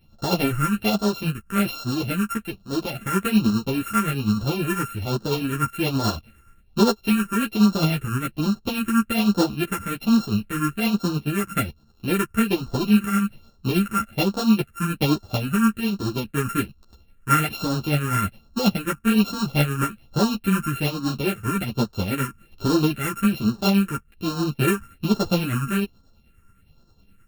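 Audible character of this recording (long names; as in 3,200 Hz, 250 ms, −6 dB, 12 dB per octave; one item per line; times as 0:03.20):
a buzz of ramps at a fixed pitch in blocks of 32 samples
phaser sweep stages 4, 1.2 Hz, lowest notch 670–2,200 Hz
tremolo triangle 9.6 Hz, depth 55%
a shimmering, thickened sound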